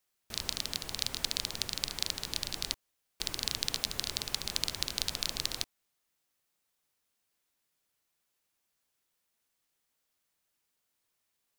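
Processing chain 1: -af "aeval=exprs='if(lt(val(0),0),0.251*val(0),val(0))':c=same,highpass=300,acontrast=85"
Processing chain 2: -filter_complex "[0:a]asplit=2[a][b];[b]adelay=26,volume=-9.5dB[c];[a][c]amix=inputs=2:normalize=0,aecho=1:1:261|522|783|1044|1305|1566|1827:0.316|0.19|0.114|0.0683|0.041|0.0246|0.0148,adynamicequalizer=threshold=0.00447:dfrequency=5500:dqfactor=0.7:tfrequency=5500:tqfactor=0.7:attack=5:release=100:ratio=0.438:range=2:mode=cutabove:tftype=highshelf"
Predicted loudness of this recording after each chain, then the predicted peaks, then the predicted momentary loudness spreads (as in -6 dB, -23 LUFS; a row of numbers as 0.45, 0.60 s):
-31.0, -34.5 LUFS; -3.5, -8.5 dBFS; 5, 12 LU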